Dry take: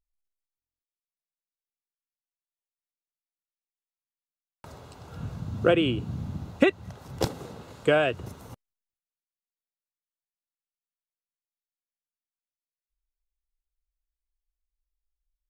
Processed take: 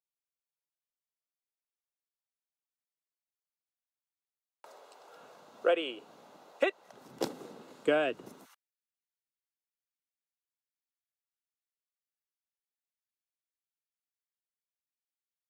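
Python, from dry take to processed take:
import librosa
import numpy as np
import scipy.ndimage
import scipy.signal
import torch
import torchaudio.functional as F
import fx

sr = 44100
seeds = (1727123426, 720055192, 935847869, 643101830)

y = fx.ladder_highpass(x, sr, hz=fx.steps((0.0, 410.0), (6.92, 200.0), (8.44, 1200.0)), resonance_pct=30)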